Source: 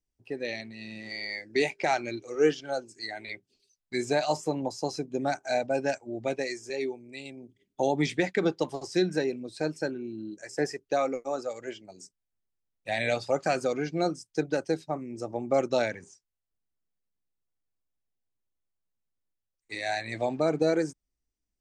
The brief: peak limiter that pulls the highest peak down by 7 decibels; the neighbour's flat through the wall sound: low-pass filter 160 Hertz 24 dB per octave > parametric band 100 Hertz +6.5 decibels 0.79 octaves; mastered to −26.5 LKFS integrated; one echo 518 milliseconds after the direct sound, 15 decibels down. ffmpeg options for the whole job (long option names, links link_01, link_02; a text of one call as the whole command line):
ffmpeg -i in.wav -af "alimiter=limit=-19.5dB:level=0:latency=1,lowpass=frequency=160:width=0.5412,lowpass=frequency=160:width=1.3066,equalizer=frequency=100:width_type=o:width=0.79:gain=6.5,aecho=1:1:518:0.178,volume=20dB" out.wav